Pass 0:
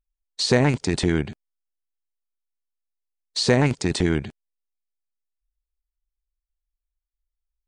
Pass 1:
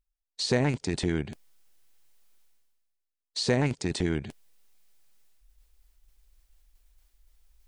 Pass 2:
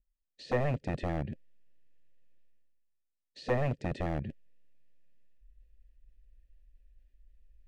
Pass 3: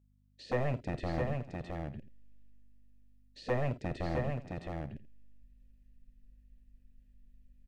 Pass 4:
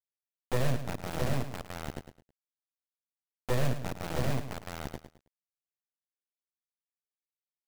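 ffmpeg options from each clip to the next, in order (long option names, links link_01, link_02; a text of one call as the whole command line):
ffmpeg -i in.wav -af "equalizer=frequency=1200:width_type=o:width=0.77:gain=-2.5,areverse,acompressor=mode=upward:threshold=-30dB:ratio=2.5,areverse,volume=-6.5dB" out.wav
ffmpeg -i in.wav -filter_complex "[0:a]acrossover=split=370[link_01][link_02];[link_01]aeval=exprs='0.0422*(abs(mod(val(0)/0.0422+3,4)-2)-1)':channel_layout=same[link_03];[link_02]asplit=3[link_04][link_05][link_06];[link_04]bandpass=frequency=530:width_type=q:width=8,volume=0dB[link_07];[link_05]bandpass=frequency=1840:width_type=q:width=8,volume=-6dB[link_08];[link_06]bandpass=frequency=2480:width_type=q:width=8,volume=-9dB[link_09];[link_07][link_08][link_09]amix=inputs=3:normalize=0[link_10];[link_03][link_10]amix=inputs=2:normalize=0,volume=2.5dB" out.wav
ffmpeg -i in.wav -af "aeval=exprs='val(0)+0.000631*(sin(2*PI*50*n/s)+sin(2*PI*2*50*n/s)/2+sin(2*PI*3*50*n/s)/3+sin(2*PI*4*50*n/s)/4+sin(2*PI*5*50*n/s)/5)':channel_layout=same,aecho=1:1:48|51|602|664|748:0.15|0.158|0.126|0.631|0.106,volume=-2.5dB" out.wav
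ffmpeg -i in.wav -af "acrusher=bits=3:dc=4:mix=0:aa=0.000001,lowshelf=frequency=430:gain=6.5,aecho=1:1:107|214|321:0.299|0.0866|0.0251" out.wav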